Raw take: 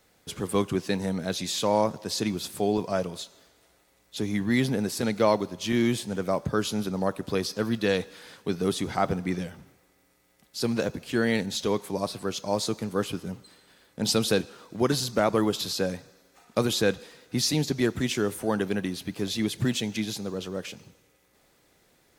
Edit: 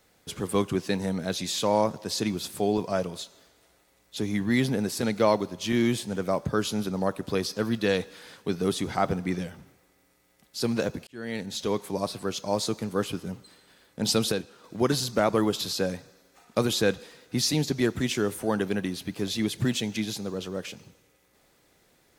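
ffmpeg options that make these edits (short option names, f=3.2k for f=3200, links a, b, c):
-filter_complex "[0:a]asplit=4[a][b][c][d];[a]atrim=end=11.07,asetpts=PTS-STARTPTS,afade=t=out:st=11.066:d=0.004:c=hsin[e];[b]atrim=start=11.07:end=14.322,asetpts=PTS-STARTPTS,afade=t=in:d=0.97:c=qsin[f];[c]atrim=start=14.318:end=14.642,asetpts=PTS-STARTPTS,volume=-5.5dB[g];[d]atrim=start=14.638[h];[e][f]concat=n=2:v=0:a=1[i];[i][g]acrossfade=d=0.004:c1=hsin:c2=hsin[j];[j][h]acrossfade=d=0.004:c1=hsin:c2=hsin"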